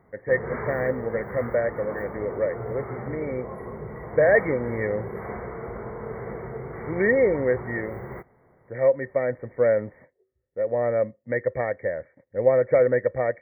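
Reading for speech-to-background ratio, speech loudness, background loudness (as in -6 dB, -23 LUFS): 10.5 dB, -25.0 LUFS, -35.5 LUFS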